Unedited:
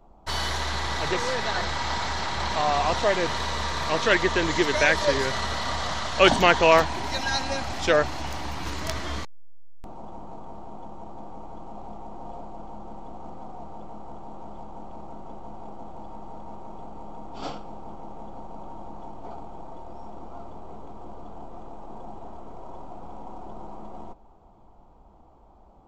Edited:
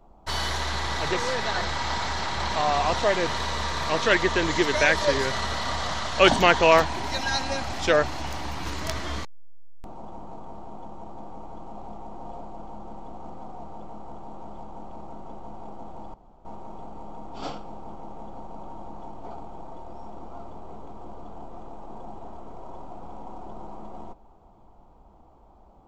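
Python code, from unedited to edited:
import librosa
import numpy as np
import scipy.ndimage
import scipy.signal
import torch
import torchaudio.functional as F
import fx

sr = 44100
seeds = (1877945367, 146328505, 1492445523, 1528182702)

y = fx.edit(x, sr, fx.room_tone_fill(start_s=16.14, length_s=0.31), tone=tone)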